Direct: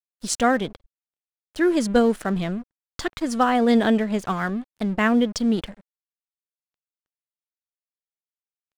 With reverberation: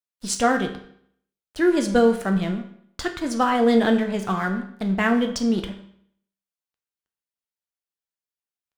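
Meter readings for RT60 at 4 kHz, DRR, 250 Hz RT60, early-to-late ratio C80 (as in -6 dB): 0.55 s, 4.5 dB, 0.65 s, 12.5 dB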